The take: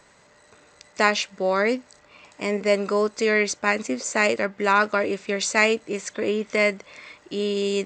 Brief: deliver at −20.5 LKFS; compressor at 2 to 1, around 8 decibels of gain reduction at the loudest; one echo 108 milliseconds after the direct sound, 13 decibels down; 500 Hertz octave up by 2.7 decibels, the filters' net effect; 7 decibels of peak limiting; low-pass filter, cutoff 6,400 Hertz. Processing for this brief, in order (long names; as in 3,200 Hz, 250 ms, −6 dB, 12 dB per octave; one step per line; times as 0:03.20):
low-pass filter 6,400 Hz
parametric band 500 Hz +3.5 dB
downward compressor 2 to 1, threshold −27 dBFS
brickwall limiter −18 dBFS
single-tap delay 108 ms −13 dB
level +9 dB